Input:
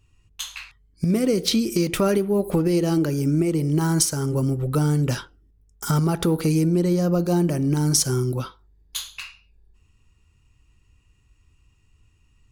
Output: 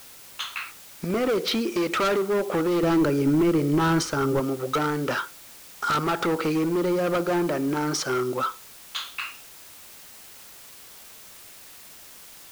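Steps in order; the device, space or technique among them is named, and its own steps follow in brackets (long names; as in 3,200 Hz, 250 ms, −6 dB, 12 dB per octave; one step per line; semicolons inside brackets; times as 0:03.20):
drive-through speaker (band-pass filter 410–2,900 Hz; parametric band 1,300 Hz +9 dB 0.34 octaves; hard clipping −26 dBFS, distortion −9 dB; white noise bed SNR 19 dB)
0:02.83–0:04.40: low-shelf EQ 210 Hz +11.5 dB
level +5.5 dB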